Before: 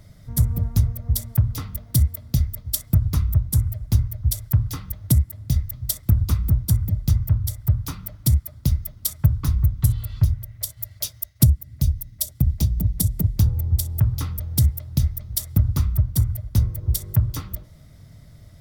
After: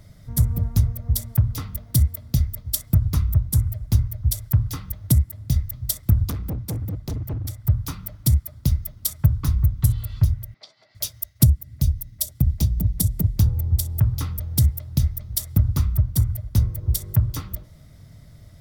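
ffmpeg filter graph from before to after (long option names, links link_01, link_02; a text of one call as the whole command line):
ffmpeg -i in.wav -filter_complex "[0:a]asettb=1/sr,asplit=3[link_01][link_02][link_03];[link_01]atrim=end=6.304[link_04];[link_02]atrim=start=6.3:end=7.65,asetpts=PTS-STARTPTS,afade=type=in:duration=0.004:curve=qsin,afade=type=out:start_time=1.346:duration=0.004:curve=qsin,highpass=81,highshelf=frequency=5500:gain=-5.5,asoftclip=type=hard:threshold=-24.5dB[link_05];[link_03]atrim=start=7.646[link_06];[link_04][link_05]acrossfade=duration=0.004:curve1=hsin:curve2=qsin[link_07];[link_07][link_06]acrossfade=duration=0.004:curve1=qsin:curve2=hsin,asettb=1/sr,asplit=3[link_08][link_09][link_10];[link_08]atrim=end=10.544[link_11];[link_09]atrim=start=10.54:end=10.95,asetpts=PTS-STARTPTS,afade=type=in:duration=0.004:curve=qsin,afade=type=out:start_time=0.406:duration=0.004:curve=qsin,acrossover=split=3600[link_12][link_13];[link_13]acompressor=threshold=-39dB:ratio=4:attack=1:release=60[link_14];[link_12][link_14]amix=inputs=2:normalize=0,highpass=frequency=270:width=0.5412,highpass=frequency=270:width=1.3066,equalizer=frequency=310:width_type=q:width=4:gain=-5,equalizer=frequency=520:width_type=q:width=4:gain=-5,equalizer=frequency=780:width_type=q:width=4:gain=3,equalizer=frequency=1700:width_type=q:width=4:gain=-5,equalizer=frequency=3000:width_type=q:width=4:gain=-4,equalizer=frequency=4700:width_type=q:width=4:gain=7,lowpass=frequency=4800:width=0.5412,lowpass=frequency=4800:width=1.3066,asplit=2[link_15][link_16];[link_16]adelay=14,volume=-11dB[link_17];[link_15][link_17]amix=inputs=2:normalize=0,atrim=end_sample=18081[link_18];[link_10]atrim=start=10.946[link_19];[link_11][link_18]acrossfade=duration=0.004:curve1=hsin:curve2=qsin[link_20];[link_20][link_19]acrossfade=duration=0.004:curve1=qsin:curve2=hsin" out.wav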